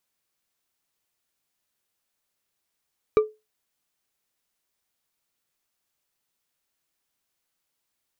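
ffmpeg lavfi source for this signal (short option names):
-f lavfi -i "aevalsrc='0.299*pow(10,-3*t/0.23)*sin(2*PI*430*t)+0.0944*pow(10,-3*t/0.113)*sin(2*PI*1185.5*t)+0.0299*pow(10,-3*t/0.071)*sin(2*PI*2323.7*t)+0.00944*pow(10,-3*t/0.05)*sin(2*PI*3841.2*t)+0.00299*pow(10,-3*t/0.038)*sin(2*PI*5736.2*t)':d=0.89:s=44100"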